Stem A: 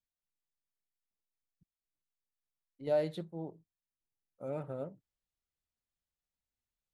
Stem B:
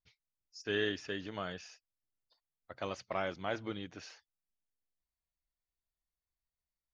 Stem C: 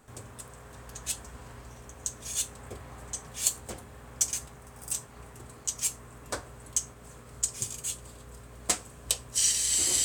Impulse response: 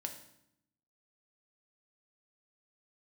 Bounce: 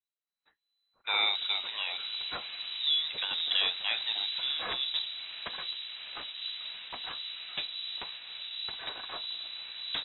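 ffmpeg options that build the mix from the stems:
-filter_complex "[0:a]acompressor=threshold=-36dB:ratio=6,volume=-1dB[a];[1:a]adelay=400,volume=-3dB[b];[2:a]acrossover=split=420|3000[c][d][e];[d]acompressor=threshold=-43dB:ratio=6[f];[c][f][e]amix=inputs=3:normalize=0,aeval=exprs='0.119*sin(PI/2*1.78*val(0)/0.119)':c=same,adelay=1250,volume=-10dB[g];[a][b][g]amix=inputs=3:normalize=0,dynaudnorm=f=250:g=5:m=11dB,acrossover=split=1200[h][i];[h]aeval=exprs='val(0)*(1-0.5/2+0.5/2*cos(2*PI*1.4*n/s))':c=same[j];[i]aeval=exprs='val(0)*(1-0.5/2-0.5/2*cos(2*PI*1.4*n/s))':c=same[k];[j][k]amix=inputs=2:normalize=0,lowpass=f=3.4k:t=q:w=0.5098,lowpass=f=3.4k:t=q:w=0.6013,lowpass=f=3.4k:t=q:w=0.9,lowpass=f=3.4k:t=q:w=2.563,afreqshift=-4000"

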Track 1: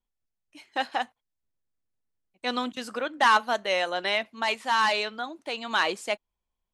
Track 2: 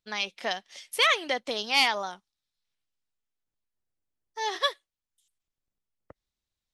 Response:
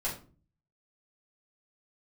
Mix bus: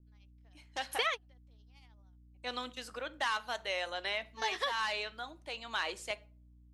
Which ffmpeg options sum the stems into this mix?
-filter_complex "[0:a]highpass=290,aeval=exprs='val(0)+0.00355*(sin(2*PI*60*n/s)+sin(2*PI*2*60*n/s)/2+sin(2*PI*3*60*n/s)/3+sin(2*PI*4*60*n/s)/4+sin(2*PI*5*60*n/s)/5)':c=same,adynamicequalizer=threshold=0.0178:dfrequency=1700:dqfactor=0.7:tfrequency=1700:tqfactor=0.7:attack=5:release=100:ratio=0.375:range=3:mode=boostabove:tftype=highshelf,volume=-11dB,asplit=3[a][b][c];[b]volume=-18.5dB[d];[1:a]tremolo=f=13:d=0.55,volume=1.5dB[e];[c]apad=whole_len=296991[f];[e][f]sidechaingate=range=-42dB:threshold=-50dB:ratio=16:detection=peak[g];[2:a]atrim=start_sample=2205[h];[d][h]afir=irnorm=-1:irlink=0[i];[a][g][i]amix=inputs=3:normalize=0,acrossover=split=1500|3000[j][k][l];[j]acompressor=threshold=-35dB:ratio=4[m];[k]acompressor=threshold=-37dB:ratio=4[n];[l]acompressor=threshold=-43dB:ratio=4[o];[m][n][o]amix=inputs=3:normalize=0"

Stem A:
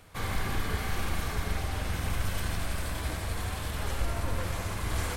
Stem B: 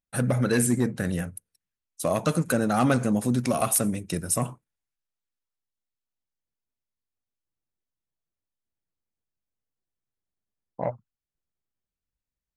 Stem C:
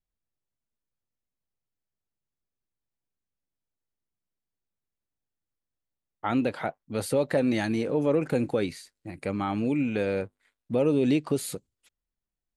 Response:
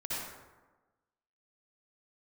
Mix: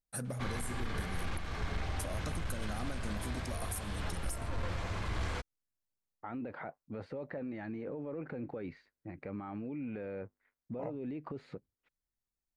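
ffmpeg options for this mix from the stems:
-filter_complex "[0:a]lowpass=5k,asoftclip=type=tanh:threshold=-22dB,adelay=250,volume=-2dB[a];[1:a]highshelf=f=6.3k:g=-10.5,volume=-9.5dB[b];[2:a]lowpass=f=2.2k:w=0.5412,lowpass=f=2.2k:w=1.3066,alimiter=level_in=1dB:limit=-24dB:level=0:latency=1:release=37,volume=-1dB,volume=-5.5dB[c];[b][c]amix=inputs=2:normalize=0,aexciter=amount=2.2:drive=9:freq=4.4k,acompressor=threshold=-37dB:ratio=3,volume=0dB[d];[a][d]amix=inputs=2:normalize=0,alimiter=level_in=3dB:limit=-24dB:level=0:latency=1:release=351,volume=-3dB"

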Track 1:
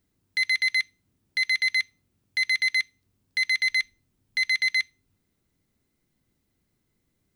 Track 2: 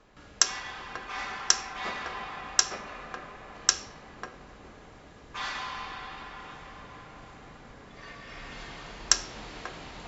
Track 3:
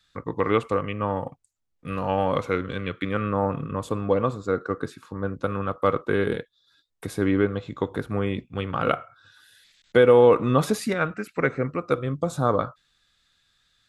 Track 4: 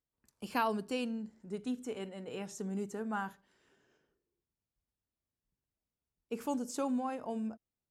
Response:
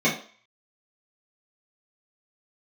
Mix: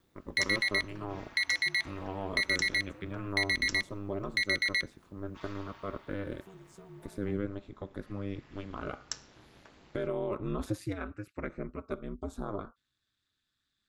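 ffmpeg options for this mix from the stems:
-filter_complex "[0:a]acompressor=threshold=-26dB:ratio=6,volume=2.5dB[a];[1:a]volume=-14.5dB[b];[2:a]alimiter=limit=-11dB:level=0:latency=1:release=38,volume=-13dB[c];[3:a]aecho=1:1:7.4:0.65,acompressor=threshold=-37dB:ratio=6,volume=-13.5dB[d];[a][b][c][d]amix=inputs=4:normalize=0,equalizer=f=200:t=o:w=1.1:g=8,aeval=exprs='val(0)*sin(2*PI*100*n/s)':c=same"

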